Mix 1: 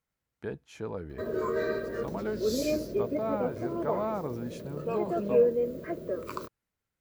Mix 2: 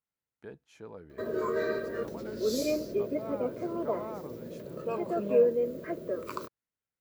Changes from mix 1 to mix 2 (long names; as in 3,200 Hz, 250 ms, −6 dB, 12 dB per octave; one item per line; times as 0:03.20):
speech −8.5 dB
master: add low-shelf EQ 88 Hz −10.5 dB